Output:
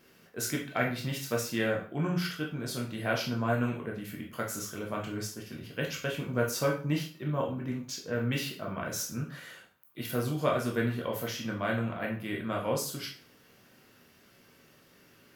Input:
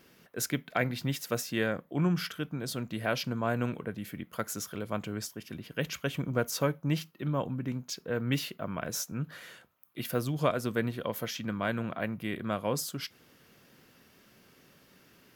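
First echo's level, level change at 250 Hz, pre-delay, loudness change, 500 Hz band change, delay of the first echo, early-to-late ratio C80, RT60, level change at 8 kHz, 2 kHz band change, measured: none, 0.0 dB, 6 ms, +0.5 dB, +1.0 dB, none, 12.0 dB, 0.40 s, +0.5 dB, +1.5 dB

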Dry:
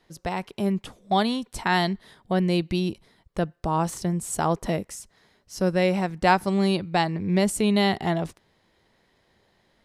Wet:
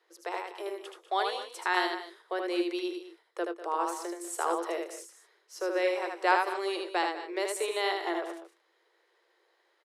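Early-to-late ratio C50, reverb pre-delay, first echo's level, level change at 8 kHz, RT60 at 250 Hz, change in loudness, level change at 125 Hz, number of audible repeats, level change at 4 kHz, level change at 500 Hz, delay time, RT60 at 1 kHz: none, none, -4.0 dB, -6.5 dB, none, -7.0 dB, under -40 dB, 3, -6.0 dB, -5.0 dB, 77 ms, none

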